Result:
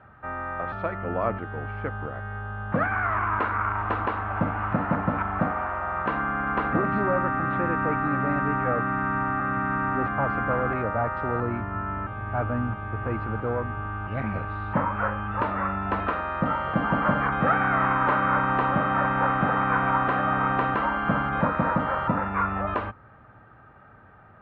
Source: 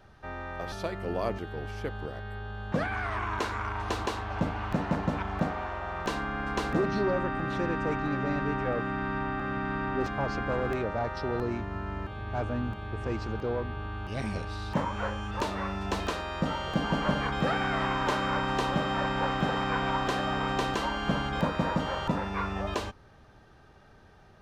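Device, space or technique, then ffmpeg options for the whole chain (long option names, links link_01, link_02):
bass cabinet: -af "highpass=65,equalizer=frequency=76:width_type=q:width=4:gain=-5,equalizer=frequency=110:width_type=q:width=4:gain=4,equalizer=frequency=160:width_type=q:width=4:gain=-3,equalizer=frequency=390:width_type=q:width=4:gain=-7,equalizer=frequency=1300:width_type=q:width=4:gain=8,lowpass=frequency=2200:width=0.5412,lowpass=frequency=2200:width=1.3066,volume=4.5dB"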